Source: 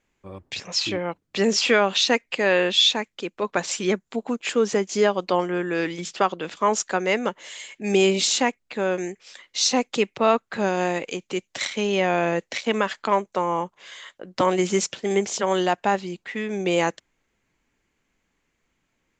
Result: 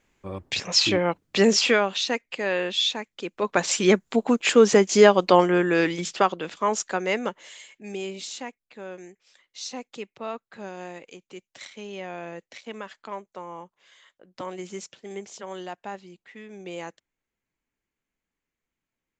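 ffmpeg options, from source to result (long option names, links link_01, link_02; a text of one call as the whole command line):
ffmpeg -i in.wav -af "volume=16dB,afade=type=out:start_time=1.26:duration=0.67:silence=0.298538,afade=type=in:start_time=3.06:duration=0.97:silence=0.266073,afade=type=out:start_time=5.41:duration=1.17:silence=0.375837,afade=type=out:start_time=7.23:duration=0.73:silence=0.266073" out.wav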